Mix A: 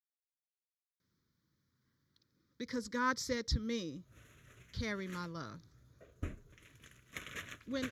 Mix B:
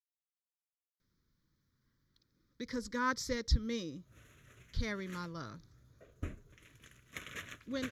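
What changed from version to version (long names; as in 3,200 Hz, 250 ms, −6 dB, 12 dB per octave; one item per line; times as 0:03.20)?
speech: remove high-pass filter 82 Hz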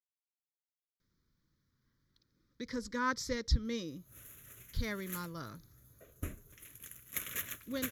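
background: remove high-frequency loss of the air 110 metres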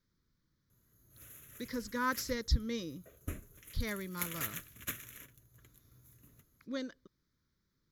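speech: entry −1.00 s
background: entry −2.95 s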